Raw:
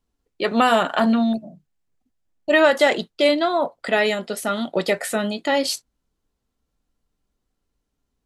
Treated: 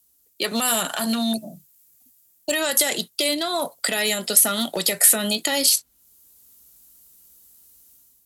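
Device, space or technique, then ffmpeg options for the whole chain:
FM broadcast chain: -filter_complex "[0:a]highpass=52,dynaudnorm=f=360:g=3:m=2.99,acrossover=split=200|3800[s0][s1][s2];[s0]acompressor=threshold=0.0355:ratio=4[s3];[s1]acompressor=threshold=0.0891:ratio=4[s4];[s2]acompressor=threshold=0.0112:ratio=4[s5];[s3][s4][s5]amix=inputs=3:normalize=0,aemphasis=mode=production:type=75fm,alimiter=limit=0.211:level=0:latency=1:release=136,asoftclip=type=hard:threshold=0.168,lowpass=f=15000:w=0.5412,lowpass=f=15000:w=1.3066,aemphasis=mode=production:type=75fm,volume=0.891"

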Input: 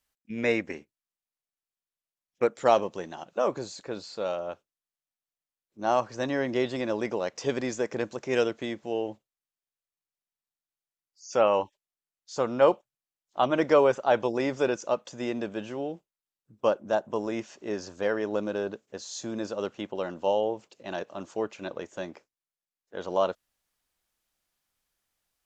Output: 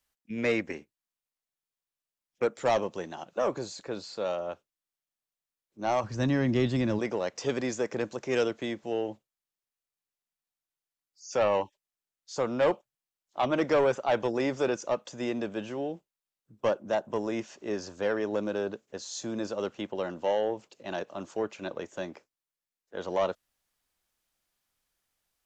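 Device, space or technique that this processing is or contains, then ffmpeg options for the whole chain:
one-band saturation: -filter_complex "[0:a]acrossover=split=230|3200[s0][s1][s2];[s1]asoftclip=type=tanh:threshold=0.106[s3];[s0][s3][s2]amix=inputs=3:normalize=0,asplit=3[s4][s5][s6];[s4]afade=t=out:st=6.03:d=0.02[s7];[s5]asubboost=boost=5.5:cutoff=210,afade=t=in:st=6.03:d=0.02,afade=t=out:st=6.98:d=0.02[s8];[s6]afade=t=in:st=6.98:d=0.02[s9];[s7][s8][s9]amix=inputs=3:normalize=0"

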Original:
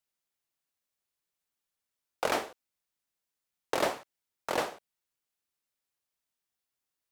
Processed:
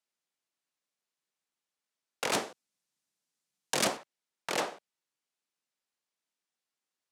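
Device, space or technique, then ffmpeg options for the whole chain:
overflowing digital effects unit: -filter_complex "[0:a]aeval=exprs='(mod(11.2*val(0)+1,2)-1)/11.2':c=same,highpass=f=150:w=0.5412,highpass=f=150:w=1.3066,lowpass=8800,asettb=1/sr,asplit=3[s0][s1][s2];[s0]atrim=end=2.334[s3];[s1]atrim=start=2.33:end=3.97,asetpts=PTS-STARTPTS,afade=t=in:d=0.004:c=qsin,afade=t=out:st=1.636:d=0.004:c=qsin,bass=f=250:g=9,treble=f=4000:g=6[s4];[s2]atrim=start=3.966[s5];[s3][s4]acrossfade=d=0.004:c1=hsin:c2=qsin[s6];[s6][s5]acrossfade=d=0.004:c1=qsin:c2=hsin"

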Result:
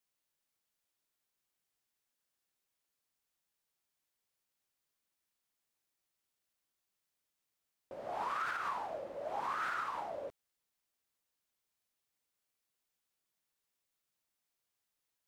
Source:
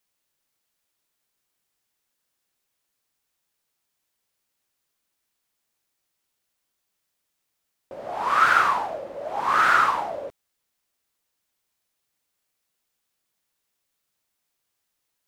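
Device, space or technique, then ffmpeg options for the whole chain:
stacked limiters: -af "alimiter=limit=0.355:level=0:latency=1:release=465,alimiter=limit=0.178:level=0:latency=1:release=112,alimiter=limit=0.0944:level=0:latency=1:release=273,volume=0.376"

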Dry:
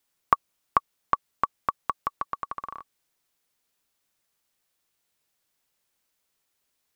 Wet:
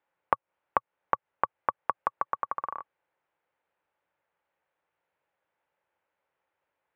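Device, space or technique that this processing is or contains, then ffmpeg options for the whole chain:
bass amplifier: -af "acompressor=threshold=0.0562:ratio=5,highpass=78,equalizer=f=120:t=q:w=4:g=-6,equalizer=f=230:t=q:w=4:g=-10,equalizer=f=540:t=q:w=4:g=8,equalizer=f=870:t=q:w=4:g=8,equalizer=f=1500:t=q:w=4:g=3,lowpass=f=2400:w=0.5412,lowpass=f=2400:w=1.3066"

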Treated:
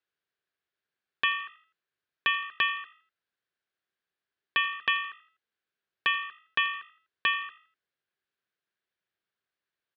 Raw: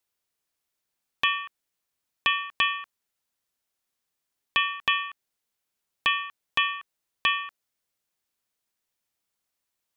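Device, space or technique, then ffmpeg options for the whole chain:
frequency-shifting delay pedal into a guitar cabinet: -filter_complex "[0:a]asplit=4[s0][s1][s2][s3];[s1]adelay=83,afreqshift=52,volume=0.112[s4];[s2]adelay=166,afreqshift=104,volume=0.0447[s5];[s3]adelay=249,afreqshift=156,volume=0.018[s6];[s0][s4][s5][s6]amix=inputs=4:normalize=0,highpass=80,equalizer=f=260:t=q:w=4:g=-4,equalizer=f=390:t=q:w=4:g=6,equalizer=f=890:t=q:w=4:g=-4,equalizer=f=1600:t=q:w=4:g=9,lowpass=f=4200:w=0.5412,lowpass=f=4200:w=1.3066,volume=0.631"

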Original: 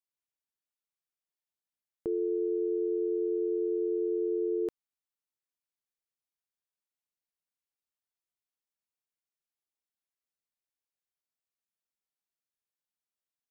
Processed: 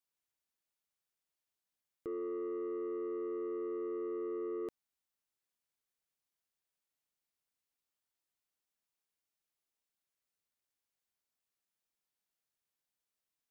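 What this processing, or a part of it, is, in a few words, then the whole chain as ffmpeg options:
soft clipper into limiter: -af "asoftclip=type=tanh:threshold=0.0335,alimiter=level_in=4.73:limit=0.0631:level=0:latency=1,volume=0.211,volume=1.33"

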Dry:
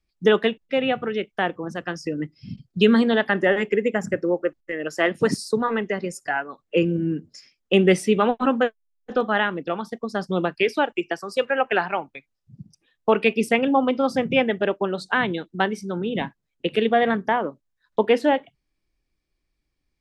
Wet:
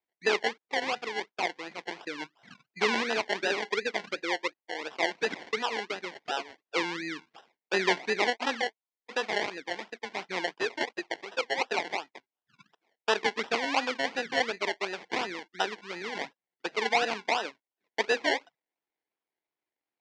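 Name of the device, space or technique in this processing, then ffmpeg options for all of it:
circuit-bent sampling toy: -af "acrusher=samples=28:mix=1:aa=0.000001:lfo=1:lforange=16.8:lforate=2.8,highpass=510,equalizer=f=570:t=q:w=4:g=-6,equalizer=f=1200:t=q:w=4:g=-6,equalizer=f=2100:t=q:w=4:g=6,lowpass=f=5400:w=0.5412,lowpass=f=5400:w=1.3066,volume=0.596"

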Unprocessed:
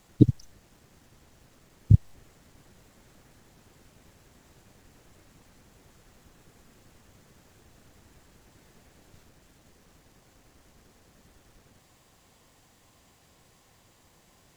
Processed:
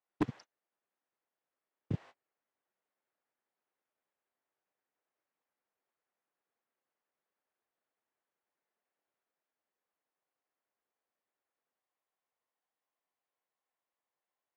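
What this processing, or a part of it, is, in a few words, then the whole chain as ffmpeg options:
walkie-talkie: -af "highpass=560,lowpass=2300,asoftclip=type=hard:threshold=0.0251,agate=range=0.0158:threshold=0.00141:ratio=16:detection=peak,volume=2.51"

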